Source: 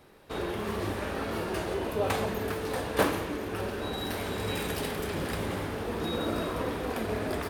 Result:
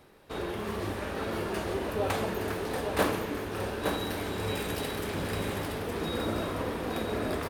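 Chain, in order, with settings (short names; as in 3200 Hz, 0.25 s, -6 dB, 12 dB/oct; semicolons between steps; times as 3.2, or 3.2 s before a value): reverse; upward compressor, threshold -47 dBFS; reverse; echo 0.867 s -5 dB; gain -1.5 dB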